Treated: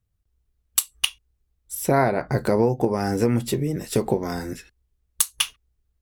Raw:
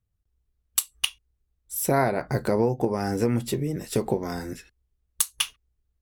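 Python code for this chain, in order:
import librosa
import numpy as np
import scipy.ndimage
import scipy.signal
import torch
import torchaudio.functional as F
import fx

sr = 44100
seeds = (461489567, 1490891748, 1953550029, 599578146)

y = fx.high_shelf(x, sr, hz=6100.0, db=-7.5, at=(1.75, 2.38))
y = y * librosa.db_to_amplitude(3.0)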